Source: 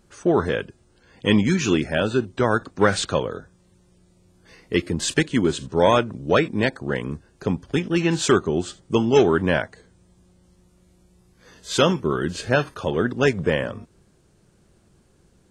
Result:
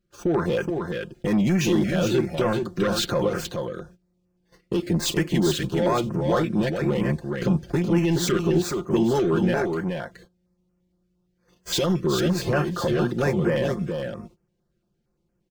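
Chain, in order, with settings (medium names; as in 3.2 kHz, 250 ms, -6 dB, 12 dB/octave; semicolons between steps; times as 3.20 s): median filter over 5 samples; gate -46 dBFS, range -25 dB; comb 5.7 ms, depth 65%; in parallel at +3 dB: compression, threshold -30 dBFS, peak gain reduction 19 dB; on the sum: peak limiter -10 dBFS, peak gain reduction 9.5 dB; saturation -15 dBFS, distortion -15 dB; on a send: delay 422 ms -5 dB; on the sum: step-sequenced notch 8.7 Hz 870–3800 Hz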